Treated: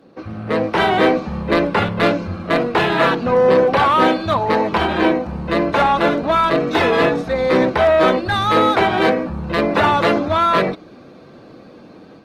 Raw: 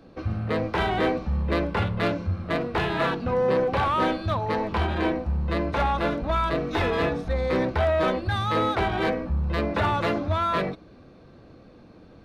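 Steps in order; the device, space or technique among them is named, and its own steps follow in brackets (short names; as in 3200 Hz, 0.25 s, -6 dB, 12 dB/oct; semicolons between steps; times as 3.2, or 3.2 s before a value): video call (HPF 170 Hz 12 dB/oct; AGC gain up to 6.5 dB; gain +3.5 dB; Opus 20 kbps 48000 Hz)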